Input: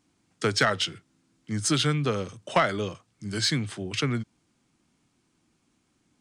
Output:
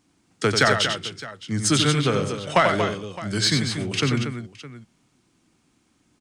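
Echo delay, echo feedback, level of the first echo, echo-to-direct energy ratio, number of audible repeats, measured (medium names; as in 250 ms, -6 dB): 91 ms, no regular repeats, -6.5 dB, -4.5 dB, 3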